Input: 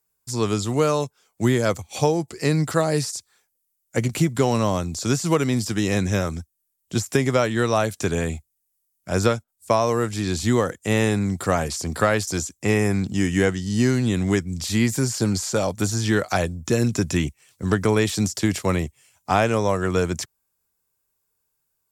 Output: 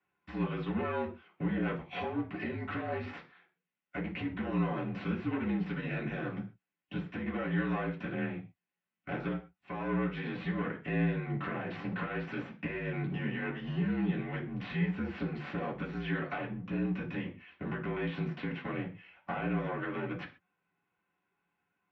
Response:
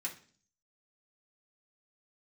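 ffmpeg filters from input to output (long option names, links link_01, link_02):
-filter_complex "[0:a]equalizer=frequency=240:width_type=o:width=0.27:gain=5,acompressor=threshold=-28dB:ratio=6,alimiter=limit=-23.5dB:level=0:latency=1:release=270,aeval=exprs='clip(val(0),-1,0.00562)':channel_layout=same,highpass=frequency=160:width_type=q:width=0.5412,highpass=frequency=160:width_type=q:width=1.307,lowpass=frequency=3000:width_type=q:width=0.5176,lowpass=frequency=3000:width_type=q:width=0.7071,lowpass=frequency=3000:width_type=q:width=1.932,afreqshift=-51[link_01];[1:a]atrim=start_sample=2205,atrim=end_sample=6615[link_02];[link_01][link_02]afir=irnorm=-1:irlink=0,volume=5.5dB"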